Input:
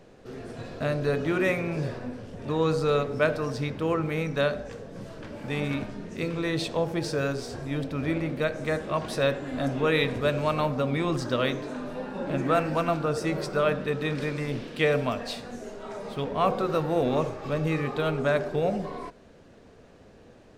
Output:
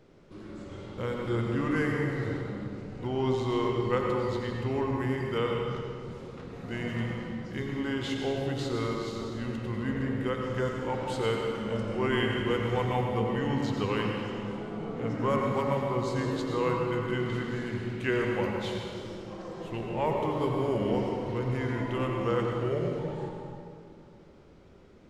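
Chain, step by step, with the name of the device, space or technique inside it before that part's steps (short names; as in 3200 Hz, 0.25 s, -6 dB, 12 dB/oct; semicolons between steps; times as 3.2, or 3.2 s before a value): slowed and reverbed (varispeed -18%; reverb RT60 2.4 s, pre-delay 81 ms, DRR 0.5 dB); gain -5.5 dB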